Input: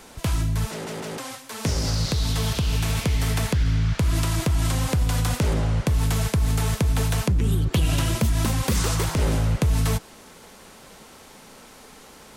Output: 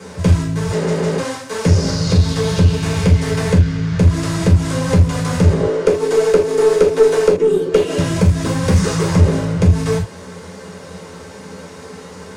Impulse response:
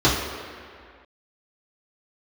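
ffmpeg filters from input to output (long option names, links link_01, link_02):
-filter_complex "[0:a]acompressor=threshold=-23dB:ratio=6,asettb=1/sr,asplit=3[link_01][link_02][link_03];[link_01]atrim=end=5.604[link_04];[link_02]atrim=start=5.6:end=7.98,asetpts=PTS-STARTPTS,afade=type=in:duration=0.004:curve=qsin,afade=type=out:start_time=2.376:duration=0.004:curve=qsin,highpass=frequency=400:width_type=q:width=4.9[link_05];[link_03]atrim=start=7.976[link_06];[link_04][link_05]acrossfade=duration=0.004:curve1=hsin:curve2=qsin[link_07];[link_07][link_06]acrossfade=duration=0.004:curve1=qsin:curve2=hsin[link_08];[1:a]atrim=start_sample=2205,afade=type=out:start_time=0.17:duration=0.01,atrim=end_sample=7938,asetrate=61740,aresample=44100[link_09];[link_08][link_09]afir=irnorm=-1:irlink=0,aeval=exprs='(tanh(0.501*val(0)+0.15)-tanh(0.15))/0.501':channel_layout=same,volume=-8dB"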